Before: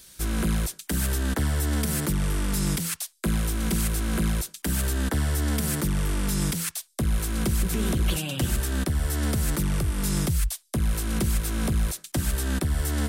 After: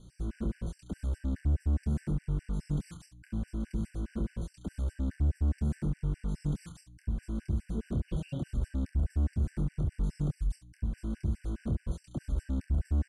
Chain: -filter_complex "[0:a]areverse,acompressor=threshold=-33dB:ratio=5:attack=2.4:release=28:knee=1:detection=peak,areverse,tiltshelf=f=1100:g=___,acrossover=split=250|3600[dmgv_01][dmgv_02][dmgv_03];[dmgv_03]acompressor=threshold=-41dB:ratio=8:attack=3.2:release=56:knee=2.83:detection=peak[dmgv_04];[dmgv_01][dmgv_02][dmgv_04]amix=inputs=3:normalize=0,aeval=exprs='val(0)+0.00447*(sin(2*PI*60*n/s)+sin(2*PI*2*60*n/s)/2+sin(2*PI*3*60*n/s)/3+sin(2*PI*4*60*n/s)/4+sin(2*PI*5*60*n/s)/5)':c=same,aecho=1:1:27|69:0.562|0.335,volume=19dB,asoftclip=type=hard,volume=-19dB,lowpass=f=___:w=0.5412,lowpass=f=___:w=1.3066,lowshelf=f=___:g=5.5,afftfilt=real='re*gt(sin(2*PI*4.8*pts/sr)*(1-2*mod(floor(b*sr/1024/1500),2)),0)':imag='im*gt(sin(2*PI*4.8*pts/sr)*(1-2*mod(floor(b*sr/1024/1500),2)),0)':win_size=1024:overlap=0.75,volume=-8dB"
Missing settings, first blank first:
8.5, 9100, 9100, 240